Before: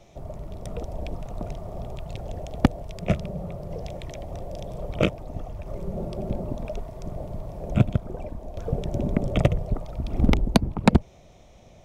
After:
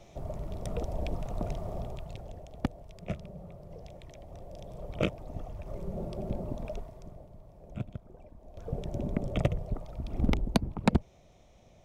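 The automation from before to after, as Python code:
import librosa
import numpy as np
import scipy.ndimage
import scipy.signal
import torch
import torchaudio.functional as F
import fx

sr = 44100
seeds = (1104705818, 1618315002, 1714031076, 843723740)

y = fx.gain(x, sr, db=fx.line((1.71, -1.0), (2.46, -12.5), (4.18, -12.5), (5.31, -5.5), (6.74, -5.5), (7.3, -17.5), (8.3, -17.5), (8.77, -7.5)))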